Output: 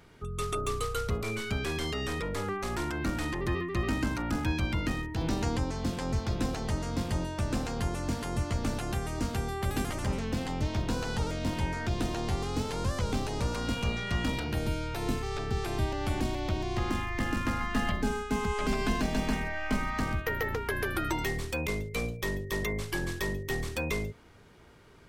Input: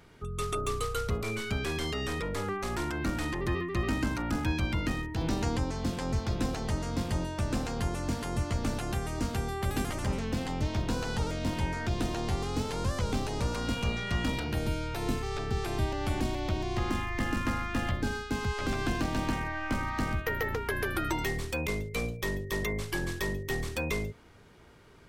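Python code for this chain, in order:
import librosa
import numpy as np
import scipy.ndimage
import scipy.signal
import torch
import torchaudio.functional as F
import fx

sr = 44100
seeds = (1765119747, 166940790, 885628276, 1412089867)

y = fx.comb(x, sr, ms=4.7, depth=0.69, at=(17.6, 20.0))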